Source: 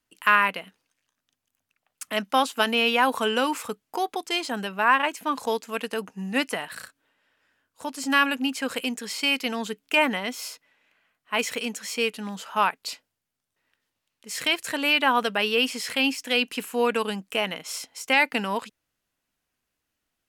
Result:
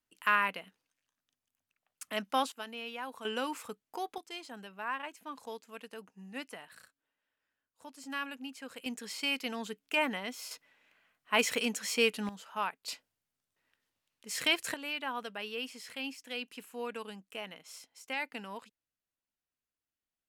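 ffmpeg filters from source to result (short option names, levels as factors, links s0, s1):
-af "asetnsamples=n=441:p=0,asendcmd='2.52 volume volume -20dB;3.25 volume volume -11dB;4.18 volume volume -17dB;8.86 volume volume -9dB;10.51 volume volume -2dB;12.29 volume volume -12dB;12.88 volume volume -4.5dB;14.74 volume volume -16dB',volume=0.376"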